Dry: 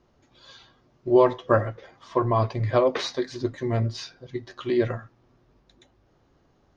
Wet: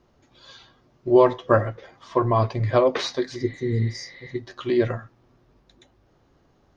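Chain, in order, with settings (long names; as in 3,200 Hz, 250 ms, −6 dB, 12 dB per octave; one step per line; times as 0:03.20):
healed spectral selection 0:03.39–0:04.30, 500–4,600 Hz after
level +2 dB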